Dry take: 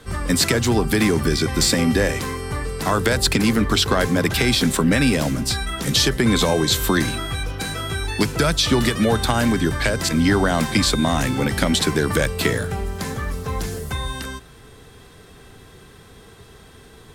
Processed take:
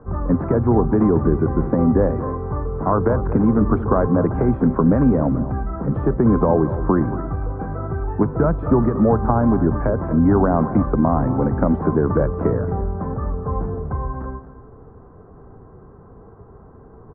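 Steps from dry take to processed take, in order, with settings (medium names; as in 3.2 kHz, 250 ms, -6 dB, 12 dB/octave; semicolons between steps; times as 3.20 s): steep low-pass 1.2 kHz 36 dB/octave; on a send: delay 228 ms -13.5 dB; on the sum: trim +2.5 dB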